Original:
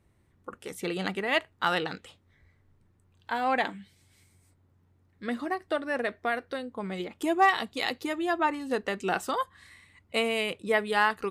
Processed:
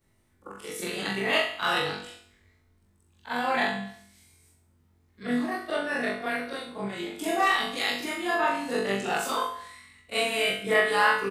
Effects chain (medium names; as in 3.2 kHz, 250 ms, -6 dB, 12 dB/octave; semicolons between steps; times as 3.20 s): short-time spectra conjugated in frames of 91 ms; treble shelf 2.7 kHz +7.5 dB; flutter echo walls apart 3.5 m, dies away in 0.43 s; harmony voices -7 st -17 dB; feedback delay 70 ms, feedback 51%, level -12 dB